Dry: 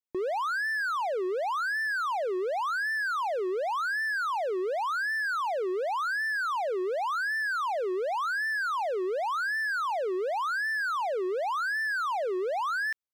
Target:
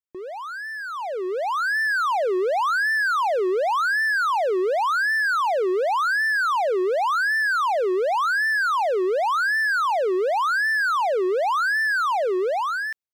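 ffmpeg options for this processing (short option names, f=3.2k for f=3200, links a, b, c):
-af "dynaudnorm=f=890:g=3:m=13dB,volume=-5dB"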